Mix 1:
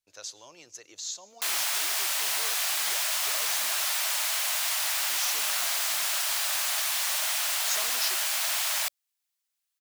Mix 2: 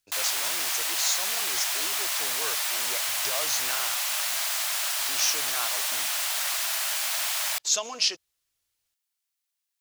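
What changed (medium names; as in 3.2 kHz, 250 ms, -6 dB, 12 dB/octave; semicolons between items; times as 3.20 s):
speech +8.5 dB; background: entry -1.30 s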